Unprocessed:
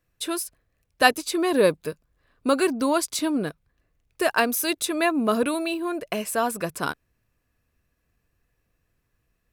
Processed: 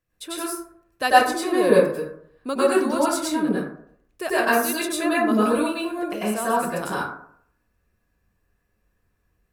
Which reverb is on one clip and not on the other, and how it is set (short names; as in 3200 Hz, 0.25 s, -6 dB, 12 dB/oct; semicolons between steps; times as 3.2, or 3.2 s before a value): plate-style reverb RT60 0.63 s, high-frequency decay 0.4×, pre-delay 85 ms, DRR -8.5 dB; gain -7 dB